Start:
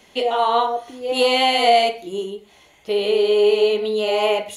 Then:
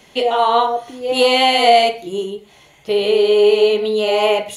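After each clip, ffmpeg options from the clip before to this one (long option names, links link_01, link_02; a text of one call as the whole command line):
ffmpeg -i in.wav -af "equalizer=frequency=140:width=7.4:gain=15,volume=3.5dB" out.wav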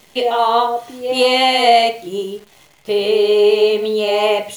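ffmpeg -i in.wav -af "acrusher=bits=8:dc=4:mix=0:aa=0.000001" out.wav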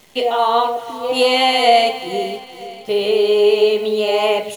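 ffmpeg -i in.wav -af "aecho=1:1:471|942|1413|1884:0.2|0.0758|0.0288|0.0109,volume=-1dB" out.wav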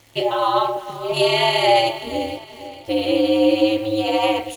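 ffmpeg -i in.wav -af "aeval=exprs='val(0)*sin(2*PI*110*n/s)':channel_layout=same" out.wav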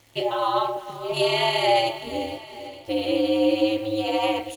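ffmpeg -i in.wav -af "aecho=1:1:888:0.0841,volume=-4.5dB" out.wav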